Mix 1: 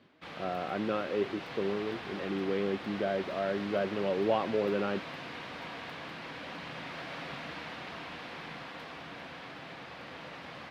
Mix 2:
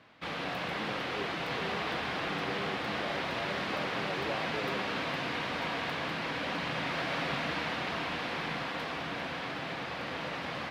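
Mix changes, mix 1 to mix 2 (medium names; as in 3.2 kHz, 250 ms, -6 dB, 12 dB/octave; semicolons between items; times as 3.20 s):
speech -10.0 dB; background +8.0 dB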